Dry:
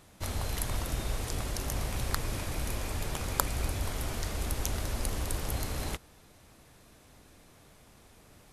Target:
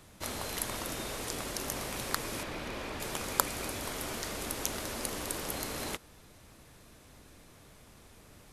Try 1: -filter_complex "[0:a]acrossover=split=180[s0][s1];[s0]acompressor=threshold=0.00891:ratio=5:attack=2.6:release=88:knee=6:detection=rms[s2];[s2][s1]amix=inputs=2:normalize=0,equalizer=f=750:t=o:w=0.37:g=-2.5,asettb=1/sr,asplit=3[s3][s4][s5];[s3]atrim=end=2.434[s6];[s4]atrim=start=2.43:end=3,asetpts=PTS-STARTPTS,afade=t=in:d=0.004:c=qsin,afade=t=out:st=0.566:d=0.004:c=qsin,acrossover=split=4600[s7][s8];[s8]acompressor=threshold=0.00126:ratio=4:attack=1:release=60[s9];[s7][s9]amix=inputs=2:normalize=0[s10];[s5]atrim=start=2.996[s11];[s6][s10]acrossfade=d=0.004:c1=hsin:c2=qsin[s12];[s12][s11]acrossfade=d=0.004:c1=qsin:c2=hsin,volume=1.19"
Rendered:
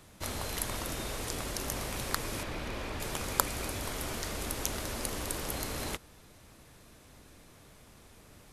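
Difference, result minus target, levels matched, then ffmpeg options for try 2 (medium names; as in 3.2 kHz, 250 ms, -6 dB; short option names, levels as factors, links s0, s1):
compression: peak gain reduction -7 dB
-filter_complex "[0:a]acrossover=split=180[s0][s1];[s0]acompressor=threshold=0.00335:ratio=5:attack=2.6:release=88:knee=6:detection=rms[s2];[s2][s1]amix=inputs=2:normalize=0,equalizer=f=750:t=o:w=0.37:g=-2.5,asettb=1/sr,asplit=3[s3][s4][s5];[s3]atrim=end=2.434[s6];[s4]atrim=start=2.43:end=3,asetpts=PTS-STARTPTS,afade=t=in:d=0.004:c=qsin,afade=t=out:st=0.566:d=0.004:c=qsin,acrossover=split=4600[s7][s8];[s8]acompressor=threshold=0.00126:ratio=4:attack=1:release=60[s9];[s7][s9]amix=inputs=2:normalize=0[s10];[s5]atrim=start=2.996[s11];[s6][s10]acrossfade=d=0.004:c1=hsin:c2=qsin[s12];[s12][s11]acrossfade=d=0.004:c1=qsin:c2=hsin,volume=1.19"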